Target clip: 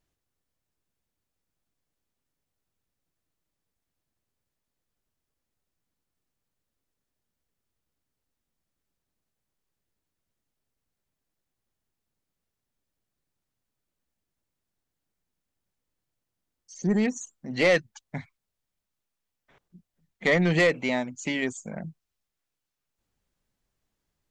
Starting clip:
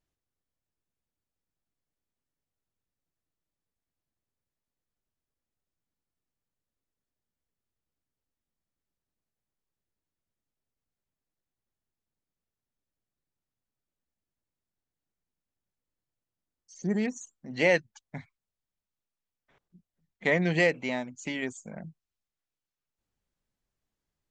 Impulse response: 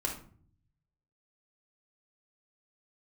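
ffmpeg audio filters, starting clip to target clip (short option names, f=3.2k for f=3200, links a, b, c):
-af "asoftclip=type=tanh:threshold=-19dB,volume=5.5dB"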